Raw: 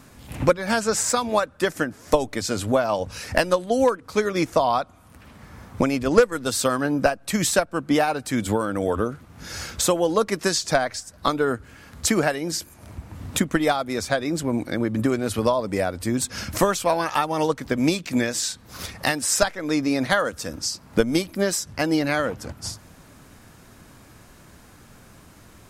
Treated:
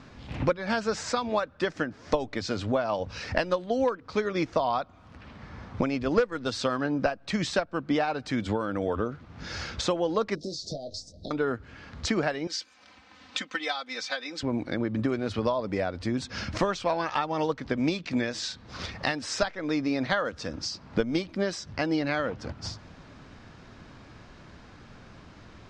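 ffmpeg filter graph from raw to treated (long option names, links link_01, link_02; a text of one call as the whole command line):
ffmpeg -i in.wav -filter_complex "[0:a]asettb=1/sr,asplit=3[link_01][link_02][link_03];[link_01]atrim=end=10.354[link_04];[link_02]atrim=start=10.35:end=11.31,asetpts=PTS-STARTPTS,afade=type=in:duration=0.004:curve=qsin,afade=type=out:start_time=0.956:duration=0.004:curve=qsin,acompressor=threshold=-27dB:ratio=12:attack=3.2:release=140:knee=1:detection=peak,asuperstop=centerf=1600:order=12:qfactor=0.5,asplit=2[link_05][link_06];[link_06]adelay=21,volume=-7dB[link_07];[link_05][link_07]amix=inputs=2:normalize=0,atrim=end_sample=42336[link_08];[link_03]atrim=start=11.306[link_09];[link_04][link_08]acrossfade=duration=0.004:curve1=hsin:curve2=qsin[link_10];[link_10][link_09]acrossfade=duration=0.004:curve1=qsin:curve2=hsin,asettb=1/sr,asplit=3[link_11][link_12][link_13];[link_11]atrim=end=12.474[link_14];[link_12]atrim=start=12.47:end=14.43,asetpts=PTS-STARTPTS,afade=type=in:duration=0.004:curve=qsin,afade=type=out:start_time=1.956:duration=0.004:curve=qsin,bandpass=frequency=4700:width_type=q:width=0.52,aecho=1:1:3.9:0.95,atrim=end_sample=86436[link_15];[link_13]atrim=start=14.426[link_16];[link_14][link_15]acrossfade=duration=0.004:curve1=hsin:curve2=qsin[link_17];[link_17][link_16]acrossfade=duration=0.004:curve1=qsin:curve2=hsin,lowpass=frequency=5100:width=0.5412,lowpass=frequency=5100:width=1.3066,acompressor=threshold=-33dB:ratio=1.5" out.wav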